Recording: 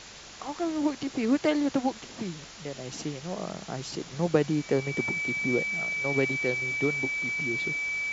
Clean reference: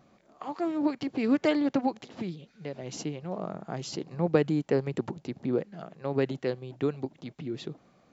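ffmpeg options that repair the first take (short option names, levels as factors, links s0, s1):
-af "bandreject=f=47.7:t=h:w=4,bandreject=f=95.4:t=h:w=4,bandreject=f=143.1:t=h:w=4,bandreject=f=190.8:t=h:w=4,bandreject=f=2300:w=30,afwtdn=0.0079"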